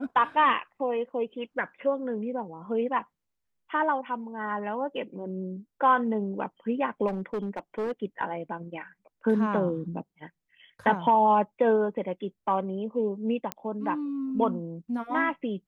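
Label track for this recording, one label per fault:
7.070000	7.920000	clipping −26.5 dBFS
13.520000	13.520000	click −14 dBFS

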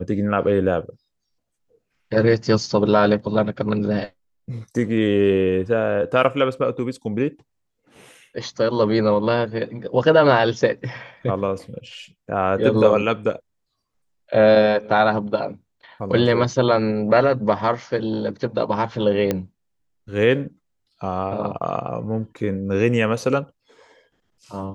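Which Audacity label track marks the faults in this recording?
19.310000	19.310000	click −8 dBFS

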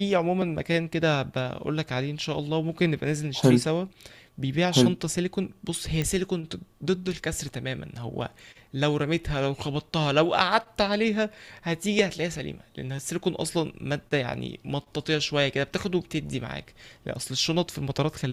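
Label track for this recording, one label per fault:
6.020000	6.020000	click −14 dBFS

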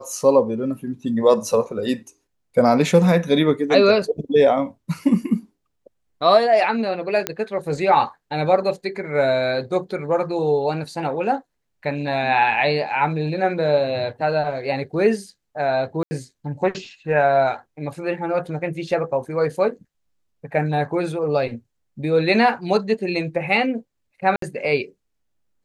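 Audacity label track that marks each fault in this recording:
7.270000	7.270000	click −5 dBFS
16.030000	16.110000	drop-out 80 ms
24.360000	24.420000	drop-out 63 ms

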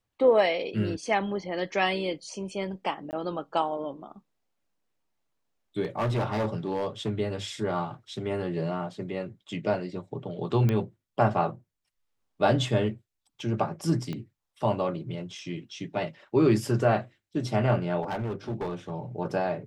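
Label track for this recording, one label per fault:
3.110000	3.130000	drop-out 19 ms
5.830000	7.110000	clipping −23.5 dBFS
10.690000	10.690000	click −15 dBFS
14.130000	14.130000	click −22 dBFS
18.020000	18.910000	clipping −27.5 dBFS

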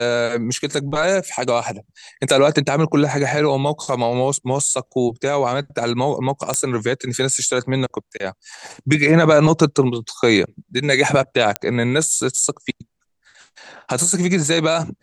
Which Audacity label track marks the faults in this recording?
0.550000	0.550000	drop-out 2.5 ms
6.540000	6.540000	click −4 dBFS
11.560000	11.560000	click −4 dBFS

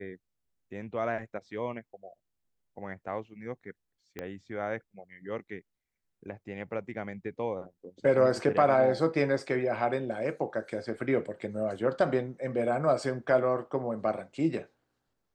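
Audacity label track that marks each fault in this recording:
4.190000	4.190000	click −22 dBFS

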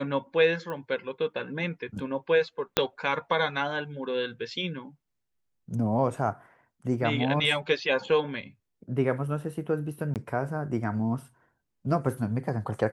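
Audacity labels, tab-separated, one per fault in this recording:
0.700000	0.700000	click −24 dBFS
2.770000	2.770000	click −6 dBFS
10.140000	10.160000	drop-out 18 ms

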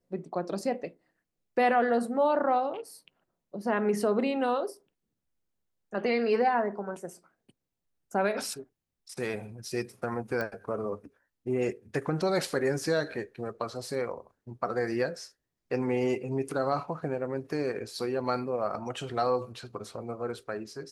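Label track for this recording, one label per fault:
10.410000	10.410000	click −20 dBFS

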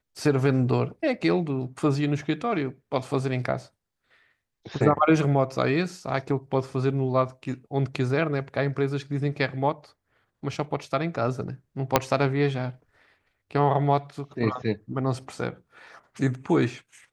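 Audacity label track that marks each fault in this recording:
11.960000	11.960000	click −2 dBFS

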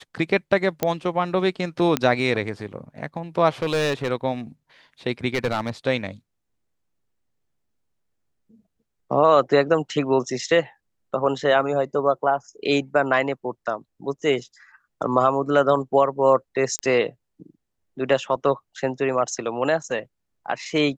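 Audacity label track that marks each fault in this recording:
0.830000	0.830000	click −7 dBFS
1.970000	1.970000	click −6 dBFS
3.620000	4.120000	clipping −18.5 dBFS
5.340000	5.700000	clipping −17.5 dBFS
16.790000	16.790000	click −12 dBFS

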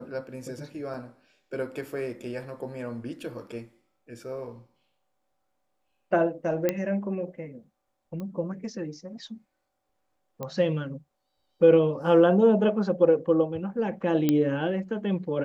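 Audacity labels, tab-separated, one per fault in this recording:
0.940000	0.940000	drop-out 3.4 ms
6.690000	6.690000	click −11 dBFS
8.200000	8.200000	click −26 dBFS
10.430000	10.430000	click −20 dBFS
14.290000	14.290000	click −10 dBFS

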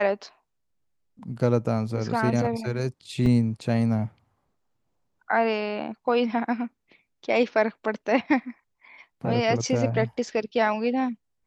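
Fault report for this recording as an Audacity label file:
3.260000	3.260000	drop-out 2.6 ms

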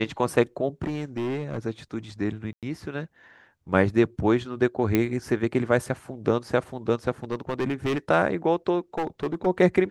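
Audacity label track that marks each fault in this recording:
0.820000	1.590000	clipping −25 dBFS
2.530000	2.630000	drop-out 97 ms
4.950000	4.950000	click −9 dBFS
7.240000	7.980000	clipping −22 dBFS
8.980000	9.470000	clipping −22.5 dBFS

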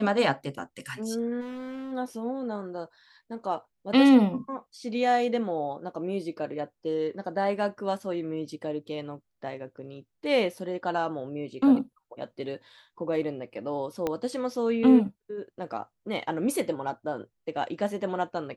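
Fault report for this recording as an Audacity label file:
1.400000	1.930000	clipping −34 dBFS
14.070000	14.070000	click −15 dBFS

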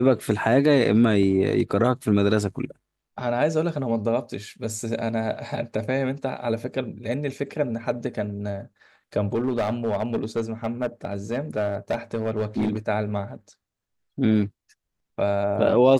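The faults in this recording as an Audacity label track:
1.230000	1.230000	drop-out 2.9 ms
9.350000	12.780000	clipping −19 dBFS

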